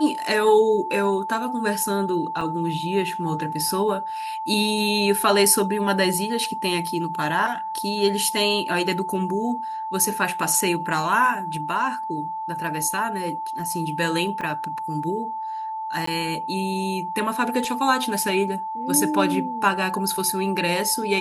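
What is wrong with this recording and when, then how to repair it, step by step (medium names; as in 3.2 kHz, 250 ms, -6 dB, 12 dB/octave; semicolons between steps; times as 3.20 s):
whine 880 Hz -27 dBFS
2.41 s: dropout 3.8 ms
14.41–14.42 s: dropout 5.1 ms
16.06–16.07 s: dropout 14 ms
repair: band-stop 880 Hz, Q 30; interpolate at 2.41 s, 3.8 ms; interpolate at 14.41 s, 5.1 ms; interpolate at 16.06 s, 14 ms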